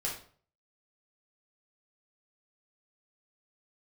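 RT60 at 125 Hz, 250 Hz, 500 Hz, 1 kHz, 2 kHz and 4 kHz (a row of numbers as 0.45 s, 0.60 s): 0.60 s, 0.50 s, 0.50 s, 0.45 s, 0.40 s, 0.35 s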